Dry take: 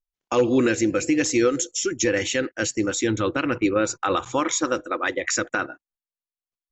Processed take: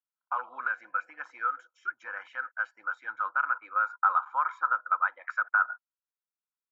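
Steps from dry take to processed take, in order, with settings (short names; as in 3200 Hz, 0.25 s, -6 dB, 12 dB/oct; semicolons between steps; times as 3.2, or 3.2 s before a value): Butterworth band-pass 1200 Hz, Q 3.4; comb 1.3 ms, depth 69%; gain +5 dB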